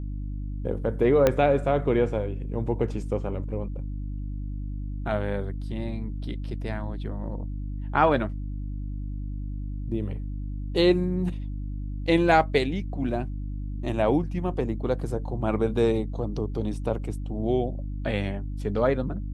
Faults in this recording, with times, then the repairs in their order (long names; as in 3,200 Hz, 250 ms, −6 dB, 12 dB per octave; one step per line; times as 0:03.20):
mains hum 50 Hz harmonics 6 −32 dBFS
0:01.27: click −7 dBFS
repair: click removal
hum removal 50 Hz, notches 6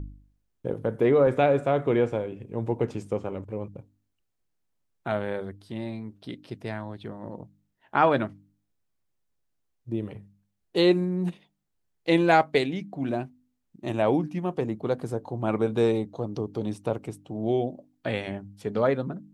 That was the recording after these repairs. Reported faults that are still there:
0:01.27: click